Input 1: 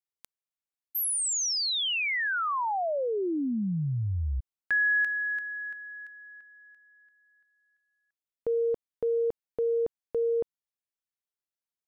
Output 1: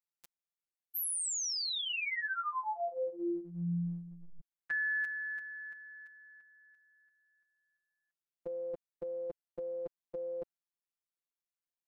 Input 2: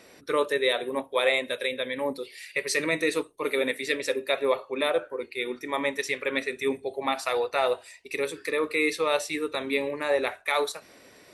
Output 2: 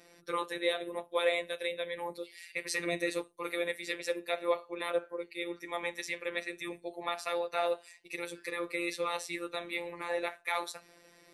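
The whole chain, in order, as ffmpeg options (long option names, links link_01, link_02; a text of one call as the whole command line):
ffmpeg -i in.wav -af "afftfilt=real='hypot(re,im)*cos(PI*b)':imag='0':win_size=1024:overlap=0.75,bandreject=frequency=3200:width=29,volume=-3.5dB" out.wav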